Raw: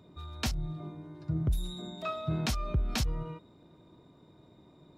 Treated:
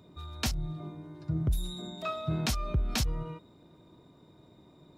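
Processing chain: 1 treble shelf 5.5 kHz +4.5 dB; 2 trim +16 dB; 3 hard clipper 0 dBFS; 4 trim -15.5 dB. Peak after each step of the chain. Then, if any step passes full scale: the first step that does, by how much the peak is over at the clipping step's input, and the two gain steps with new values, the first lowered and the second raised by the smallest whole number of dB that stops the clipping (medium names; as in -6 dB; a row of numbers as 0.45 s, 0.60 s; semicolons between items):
-19.5 dBFS, -3.5 dBFS, -3.5 dBFS, -19.0 dBFS; nothing clips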